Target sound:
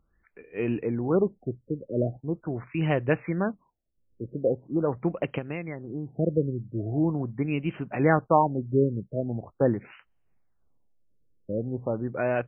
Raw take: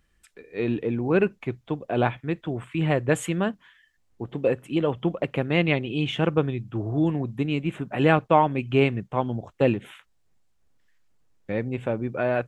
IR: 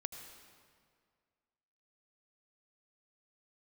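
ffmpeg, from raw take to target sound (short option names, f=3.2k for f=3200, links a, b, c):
-filter_complex "[0:a]asettb=1/sr,asplit=3[a][b][c];[a]atrim=end=5.384[d];[b]atrim=start=5.38:end=6.18,asetpts=PTS-STARTPTS,afade=t=in:d=0.004:c=qsin,afade=t=out:st=0.796:d=0.004:c=qsin,acompressor=threshold=-27dB:ratio=12[e];[c]atrim=start=6.176[f];[d][e]acrossfade=d=0.004:c1=hsin:c2=qsin[g];[g][f]acrossfade=d=0.004:c1=qsin:c2=hsin,afftfilt=real='re*lt(b*sr/1024,560*pow(3200/560,0.5+0.5*sin(2*PI*0.42*pts/sr)))':imag='im*lt(b*sr/1024,560*pow(3200/560,0.5+0.5*sin(2*PI*0.42*pts/sr)))':win_size=1024:overlap=0.75,volume=-2dB"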